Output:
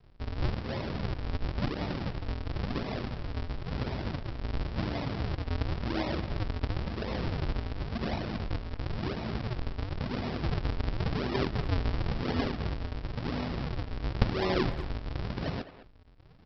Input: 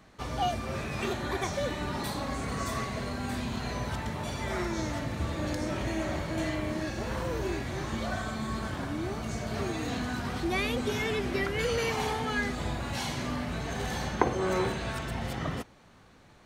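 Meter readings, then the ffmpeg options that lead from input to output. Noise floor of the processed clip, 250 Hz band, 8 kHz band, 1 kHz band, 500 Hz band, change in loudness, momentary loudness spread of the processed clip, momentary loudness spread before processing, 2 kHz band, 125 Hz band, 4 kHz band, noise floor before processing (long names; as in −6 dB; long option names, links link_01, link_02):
−52 dBFS, −1.5 dB, below −20 dB, −5.5 dB, −4.0 dB, −2.0 dB, 6 LU, 5 LU, −6.5 dB, +2.5 dB, −3.5 dB, −56 dBFS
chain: -filter_complex "[0:a]aresample=11025,acrusher=samples=36:mix=1:aa=0.000001:lfo=1:lforange=57.6:lforate=0.95,aresample=44100,asplit=2[link_01][link_02];[link_02]adelay=210,highpass=300,lowpass=3400,asoftclip=type=hard:threshold=-19dB,volume=-13dB[link_03];[link_01][link_03]amix=inputs=2:normalize=0"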